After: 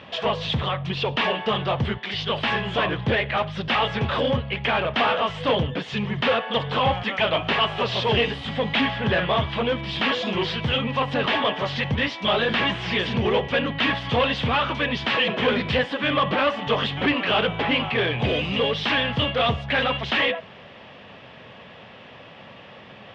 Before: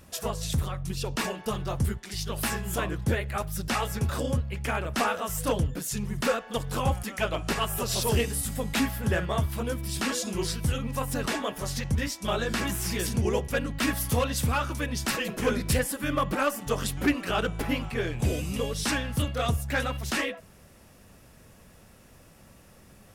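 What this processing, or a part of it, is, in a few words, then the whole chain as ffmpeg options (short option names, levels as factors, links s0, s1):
overdrive pedal into a guitar cabinet: -filter_complex "[0:a]asplit=2[s0][s1];[s1]highpass=f=720:p=1,volume=10,asoftclip=type=tanh:threshold=0.158[s2];[s0][s2]amix=inputs=2:normalize=0,lowpass=f=2700:p=1,volume=0.501,highpass=85,equalizer=f=120:t=q:w=4:g=4,equalizer=f=330:t=q:w=4:g=-5,equalizer=f=1400:t=q:w=4:g=-6,equalizer=f=3200:t=q:w=4:g=8,lowpass=f=3600:w=0.5412,lowpass=f=3600:w=1.3066,volume=1.5"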